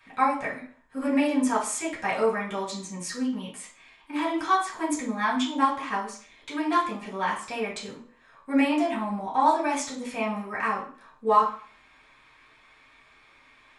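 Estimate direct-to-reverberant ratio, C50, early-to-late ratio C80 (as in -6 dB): -8.0 dB, 7.5 dB, 12.5 dB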